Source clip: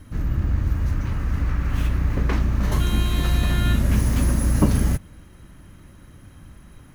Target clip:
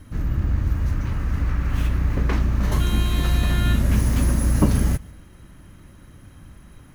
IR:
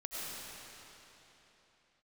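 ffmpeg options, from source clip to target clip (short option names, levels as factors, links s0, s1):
-filter_complex "[0:a]asplit=2[s0][s1];[1:a]atrim=start_sample=2205,atrim=end_sample=3969,adelay=149[s2];[s1][s2]afir=irnorm=-1:irlink=0,volume=0.106[s3];[s0][s3]amix=inputs=2:normalize=0"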